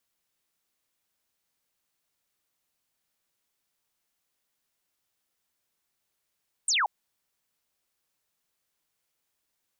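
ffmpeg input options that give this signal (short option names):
-f lavfi -i "aevalsrc='0.0794*clip(t/0.002,0,1)*clip((0.18-t)/0.002,0,1)*sin(2*PI*8900*0.18/log(750/8900)*(exp(log(750/8900)*t/0.18)-1))':d=0.18:s=44100"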